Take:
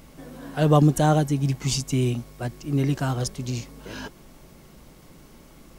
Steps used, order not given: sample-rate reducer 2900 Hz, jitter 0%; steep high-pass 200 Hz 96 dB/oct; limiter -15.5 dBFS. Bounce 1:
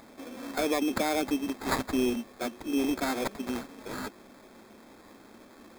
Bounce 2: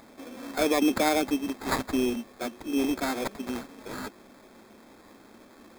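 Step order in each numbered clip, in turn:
limiter > steep high-pass > sample-rate reducer; steep high-pass > sample-rate reducer > limiter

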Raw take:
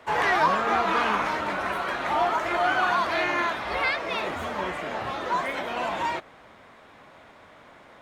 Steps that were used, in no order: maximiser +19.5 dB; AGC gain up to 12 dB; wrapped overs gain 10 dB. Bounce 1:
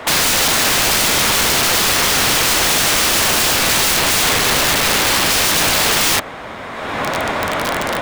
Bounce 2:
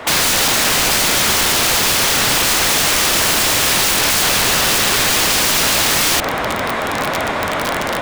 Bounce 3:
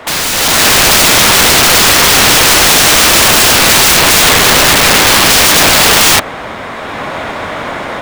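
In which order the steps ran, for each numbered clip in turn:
maximiser > AGC > wrapped overs; AGC > maximiser > wrapped overs; maximiser > wrapped overs > AGC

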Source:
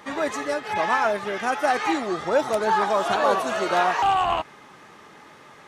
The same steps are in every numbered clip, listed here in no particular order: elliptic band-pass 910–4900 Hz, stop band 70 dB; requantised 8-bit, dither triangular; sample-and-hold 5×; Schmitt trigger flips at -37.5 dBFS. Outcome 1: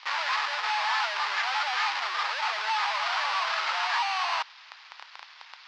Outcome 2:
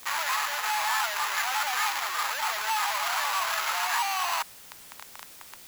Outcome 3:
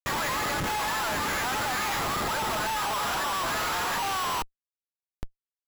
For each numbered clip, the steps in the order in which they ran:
Schmitt trigger > requantised > sample-and-hold > elliptic band-pass; Schmitt trigger > elliptic band-pass > sample-and-hold > requantised; requantised > elliptic band-pass > Schmitt trigger > sample-and-hold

